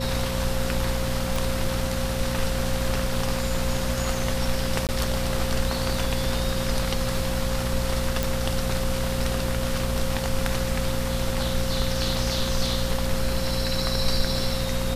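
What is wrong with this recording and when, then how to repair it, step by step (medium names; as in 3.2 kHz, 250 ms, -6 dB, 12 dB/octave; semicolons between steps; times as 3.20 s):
hum 60 Hz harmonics 4 -29 dBFS
whine 530 Hz -31 dBFS
1.36 s: pop
4.87–4.89 s: dropout 18 ms
8.23 s: pop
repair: de-click; band-stop 530 Hz, Q 30; de-hum 60 Hz, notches 4; interpolate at 4.87 s, 18 ms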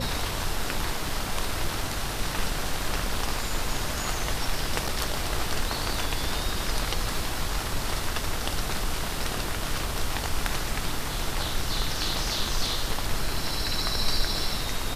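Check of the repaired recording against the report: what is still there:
nothing left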